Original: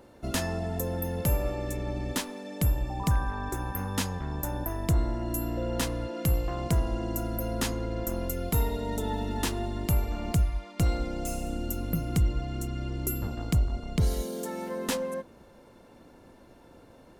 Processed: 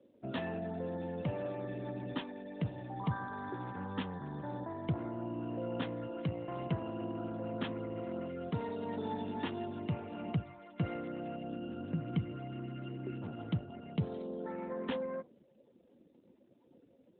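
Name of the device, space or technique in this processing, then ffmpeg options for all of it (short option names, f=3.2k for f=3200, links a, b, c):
mobile call with aggressive noise cancelling: -filter_complex "[0:a]asplit=3[a][b][c];[a]afade=t=out:st=12.51:d=0.02[d];[b]equalizer=f=72:w=2.1:g=-5.5,afade=t=in:st=12.51:d=0.02,afade=t=out:st=13.32:d=0.02[e];[c]afade=t=in:st=13.32:d=0.02[f];[d][e][f]amix=inputs=3:normalize=0,highpass=f=110:w=0.5412,highpass=f=110:w=1.3066,afftdn=nr=22:nf=-46,volume=-5dB" -ar 8000 -c:a libopencore_amrnb -b:a 12200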